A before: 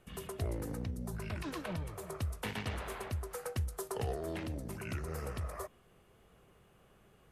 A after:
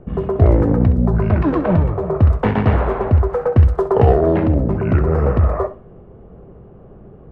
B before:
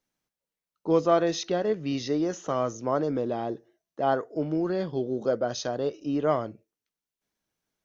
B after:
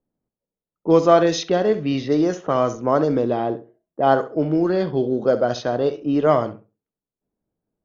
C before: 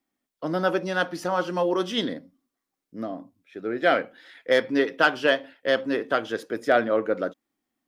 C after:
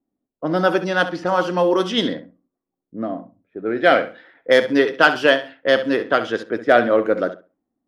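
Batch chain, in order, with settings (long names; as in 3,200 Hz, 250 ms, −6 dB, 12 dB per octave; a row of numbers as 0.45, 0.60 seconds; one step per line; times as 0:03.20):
floating-point word with a short mantissa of 8 bits
flutter between parallel walls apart 11.4 metres, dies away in 0.31 s
low-pass that shuts in the quiet parts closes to 530 Hz, open at −20.5 dBFS
normalise the peak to −1.5 dBFS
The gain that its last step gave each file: +24.5, +8.0, +6.0 decibels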